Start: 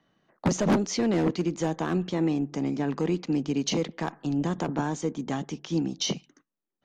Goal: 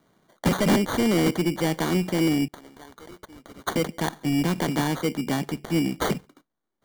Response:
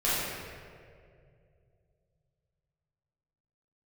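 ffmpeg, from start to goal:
-filter_complex "[0:a]asettb=1/sr,asplit=3[a][b][c];[a]atrim=end=2.484[d];[b]atrim=start=2.48:end=3.76,asetpts=PTS-STARTPTS,afade=t=in:d=0.004:c=qsin,afade=t=out:st=1.276:d=0.004:c=qsin,aderivative[e];[c]atrim=start=3.756[f];[d][e]acrossfade=d=0.004:c1=hsin:c2=qsin[g];[g][f]acrossfade=d=0.004:c1=qsin:c2=hsin,acrusher=samples=17:mix=1:aa=0.000001,asoftclip=type=tanh:threshold=-20.5dB,volume=5.5dB"

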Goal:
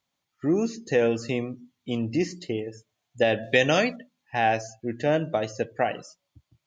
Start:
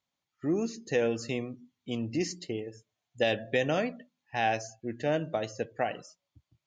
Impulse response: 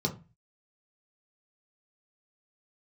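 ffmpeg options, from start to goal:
-filter_complex "[0:a]acrossover=split=2800[a][b];[b]acompressor=threshold=-44dB:ratio=4:attack=1:release=60[c];[a][c]amix=inputs=2:normalize=0,asettb=1/sr,asplit=3[d][e][f];[d]atrim=end=3.434[g];[e]atrim=start=3.43:end=3.96,asetpts=PTS-STARTPTS,afade=t=in:d=0.004:c=qsin,afade=t=out:st=0.526:d=0.004:c=qsin,equalizer=f=5.5k:w=0.51:g=13.5[h];[f]atrim=start=3.956[i];[g][h]acrossfade=d=0.004:c1=hsin:c2=qsin[j];[j][i]acrossfade=d=0.004:c1=qsin:c2=hsin,volume=5.5dB"

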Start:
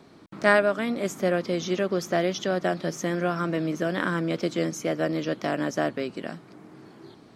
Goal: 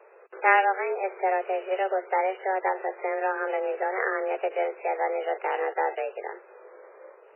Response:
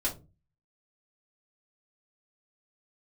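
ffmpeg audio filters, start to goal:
-af "acrusher=bits=4:mode=log:mix=0:aa=0.000001,highpass=f=200:t=q:w=0.5412,highpass=f=200:t=q:w=1.307,lowpass=f=2.9k:t=q:w=0.5176,lowpass=f=2.9k:t=q:w=0.7071,lowpass=f=2.9k:t=q:w=1.932,afreqshift=190" -ar 8000 -c:a libmp3lame -b:a 8k

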